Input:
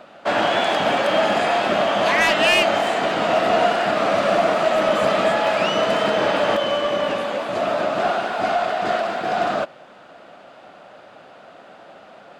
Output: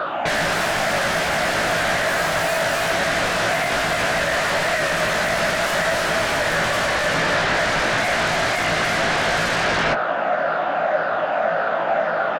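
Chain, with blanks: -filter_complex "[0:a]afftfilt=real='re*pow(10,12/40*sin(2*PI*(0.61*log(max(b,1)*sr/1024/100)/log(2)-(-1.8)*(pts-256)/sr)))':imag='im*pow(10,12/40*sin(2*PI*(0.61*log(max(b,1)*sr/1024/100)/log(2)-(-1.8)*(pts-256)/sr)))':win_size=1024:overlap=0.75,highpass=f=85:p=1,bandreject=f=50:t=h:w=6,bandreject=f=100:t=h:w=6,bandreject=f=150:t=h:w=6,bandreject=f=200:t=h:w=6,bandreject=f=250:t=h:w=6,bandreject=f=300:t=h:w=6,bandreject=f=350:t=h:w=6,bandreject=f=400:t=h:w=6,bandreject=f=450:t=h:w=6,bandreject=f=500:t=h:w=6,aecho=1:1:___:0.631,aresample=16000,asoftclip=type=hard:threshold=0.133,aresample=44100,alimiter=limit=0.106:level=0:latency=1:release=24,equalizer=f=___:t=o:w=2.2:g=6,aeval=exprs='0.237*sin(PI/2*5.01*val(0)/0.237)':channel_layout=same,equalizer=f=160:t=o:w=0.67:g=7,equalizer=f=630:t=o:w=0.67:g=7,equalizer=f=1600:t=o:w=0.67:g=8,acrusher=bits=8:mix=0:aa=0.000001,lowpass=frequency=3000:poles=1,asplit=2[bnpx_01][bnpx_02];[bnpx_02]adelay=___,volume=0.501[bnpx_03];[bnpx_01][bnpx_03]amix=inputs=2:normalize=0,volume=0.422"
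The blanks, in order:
287, 1200, 18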